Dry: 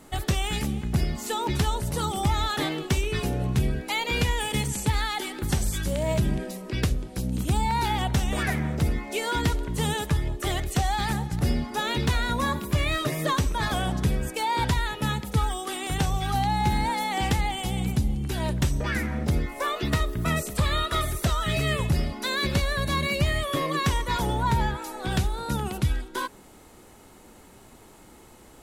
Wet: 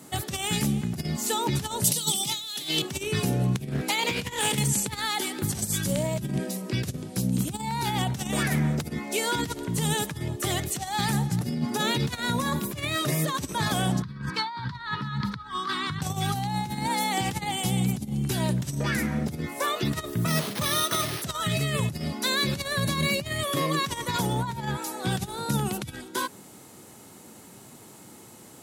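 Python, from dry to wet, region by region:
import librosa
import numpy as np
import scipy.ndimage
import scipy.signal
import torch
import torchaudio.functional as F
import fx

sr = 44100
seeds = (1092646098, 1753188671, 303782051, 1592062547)

y = fx.chain(x, sr, fx.highpass(hz=140.0, slope=24),
    fx.high_shelf_res(hz=2200.0, db=13.0, q=1.5),
    fx.overload_stage(gain_db=14.5), at=(1.84, 2.82))
y = fx.chain(y, sr, fx.over_compress(threshold_db=-28.0, ratio=-0.5),
    fx.doppler_dist(depth_ms=0.5), at=(3.56, 4.58))
y = fx.chain(y, sr, fx.highpass(hz=110.0, slope=24),
    fx.low_shelf(hz=260.0, db=8.5), at=(11.45, 11.91))
y = fx.chain(y, sr, fx.curve_eq(hz=(180.0, 430.0, 740.0, 1000.0, 1700.0, 2700.0, 4300.0, 7000.0, 12000.0), db=(0, -14, -21, 8, 3, -11, 1, -23, -29)),
    fx.over_compress(threshold_db=-33.0, ratio=-1.0), at=(14.02, 16.02))
y = fx.chain(y, sr, fx.highpass(hz=140.0, slope=12),
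    fx.resample_bad(factor=6, down='none', up='hold'), at=(20.27, 21.22))
y = fx.over_compress(y, sr, threshold_db=-26.0, ratio=-0.5)
y = scipy.signal.sosfilt(scipy.signal.butter(4, 110.0, 'highpass', fs=sr, output='sos'), y)
y = fx.bass_treble(y, sr, bass_db=6, treble_db=7)
y = F.gain(torch.from_numpy(y), -1.5).numpy()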